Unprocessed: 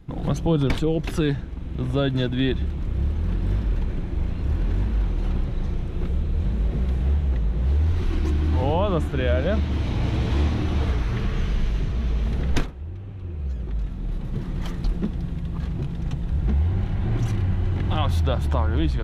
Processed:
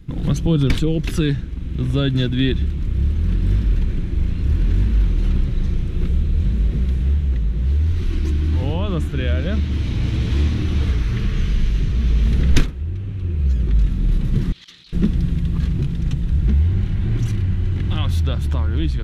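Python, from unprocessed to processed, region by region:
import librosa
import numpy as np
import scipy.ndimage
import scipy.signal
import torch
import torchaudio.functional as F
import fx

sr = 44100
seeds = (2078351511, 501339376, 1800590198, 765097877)

y = fx.chain(x, sr, fx.bandpass_q(hz=3800.0, q=2.7),
    fx.over_compress(threshold_db=-51.0, ratio=-0.5), at=(14.52, 14.93))
y = fx.peak_eq(y, sr, hz=750.0, db=-13.0, octaves=1.5)
y = fx.rider(y, sr, range_db=10, speed_s=2.0)
y = y * librosa.db_to_amplitude(5.0)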